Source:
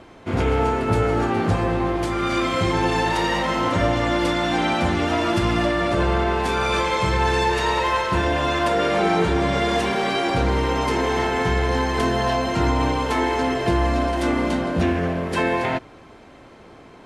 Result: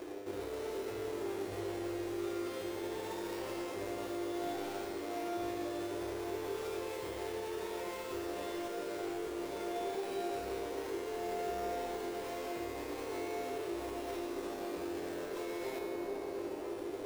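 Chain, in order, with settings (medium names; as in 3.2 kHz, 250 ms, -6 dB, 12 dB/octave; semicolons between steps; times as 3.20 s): square wave that keeps the level; resonant low shelf 280 Hz -11.5 dB, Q 1.5; in parallel at -7.5 dB: sample-and-hold 28×; on the sum: bucket-brigade echo 427 ms, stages 4096, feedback 71%, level -21 dB; reverse; compression, threshold -26 dBFS, peak gain reduction 15.5 dB; reverse; peak limiter -26.5 dBFS, peak gain reduction 11 dB; peaking EQ 370 Hz +11 dB 0.7 oct; feedback comb 100 Hz, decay 2 s, mix 90%; trim +6.5 dB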